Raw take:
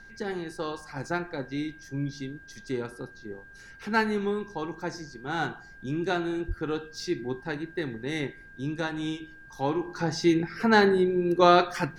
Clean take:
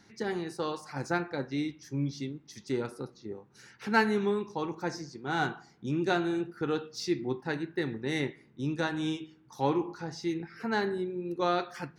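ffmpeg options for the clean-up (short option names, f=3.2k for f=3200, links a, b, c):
-filter_complex "[0:a]bandreject=f=1.6k:w=30,asplit=3[a][b][c];[a]afade=t=out:st=6.47:d=0.02[d];[b]highpass=f=140:w=0.5412,highpass=f=140:w=1.3066,afade=t=in:st=6.47:d=0.02,afade=t=out:st=6.59:d=0.02[e];[c]afade=t=in:st=6.59:d=0.02[f];[d][e][f]amix=inputs=3:normalize=0,agate=range=-21dB:threshold=-41dB,asetnsamples=n=441:p=0,asendcmd='9.95 volume volume -10dB',volume=0dB"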